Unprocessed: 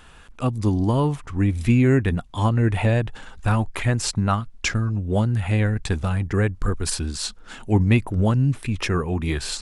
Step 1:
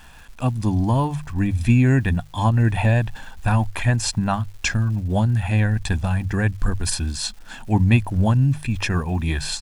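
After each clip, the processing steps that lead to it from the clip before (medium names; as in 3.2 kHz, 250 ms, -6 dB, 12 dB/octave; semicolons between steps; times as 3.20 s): hum notches 50/100/150 Hz; comb 1.2 ms, depth 53%; crackle 450 per s -41 dBFS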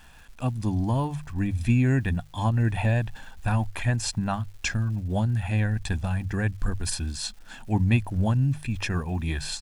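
peaking EQ 1 kHz -2 dB 0.42 oct; trim -5.5 dB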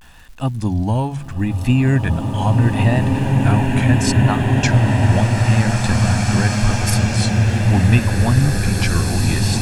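vibrato 0.76 Hz 99 cents; swelling reverb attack 2440 ms, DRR -2.5 dB; trim +6.5 dB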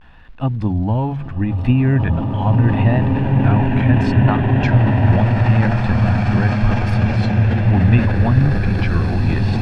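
transient shaper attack +2 dB, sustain +6 dB; distance through air 360 m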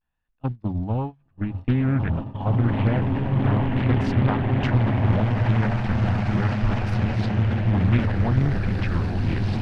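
gate -18 dBFS, range -30 dB; loudspeaker Doppler distortion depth 0.71 ms; trim -6.5 dB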